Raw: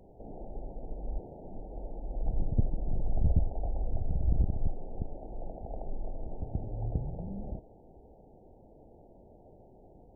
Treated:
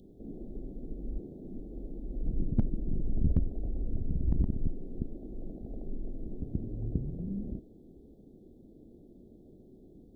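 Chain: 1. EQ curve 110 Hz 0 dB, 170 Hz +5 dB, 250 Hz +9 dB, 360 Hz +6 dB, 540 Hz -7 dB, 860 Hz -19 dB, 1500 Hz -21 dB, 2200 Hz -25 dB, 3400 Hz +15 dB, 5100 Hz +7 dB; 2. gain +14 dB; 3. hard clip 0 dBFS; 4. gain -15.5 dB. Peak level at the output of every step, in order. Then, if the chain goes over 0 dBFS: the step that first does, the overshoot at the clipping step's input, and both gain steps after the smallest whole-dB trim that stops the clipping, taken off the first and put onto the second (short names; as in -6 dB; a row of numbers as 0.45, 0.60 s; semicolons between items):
-10.5, +3.5, 0.0, -15.5 dBFS; step 2, 3.5 dB; step 2 +10 dB, step 4 -11.5 dB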